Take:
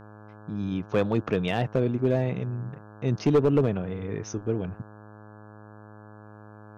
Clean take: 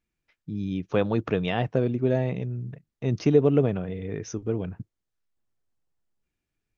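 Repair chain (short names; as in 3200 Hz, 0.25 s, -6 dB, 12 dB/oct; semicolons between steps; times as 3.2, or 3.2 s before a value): clip repair -14.5 dBFS; de-hum 105.8 Hz, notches 16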